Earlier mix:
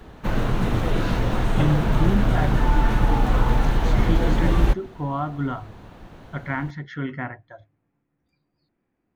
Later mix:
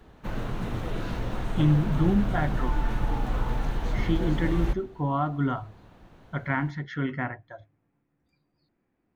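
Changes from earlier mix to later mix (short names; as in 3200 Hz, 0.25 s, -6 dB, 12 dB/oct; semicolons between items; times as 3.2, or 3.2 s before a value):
background -9.5 dB; reverb: on, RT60 0.60 s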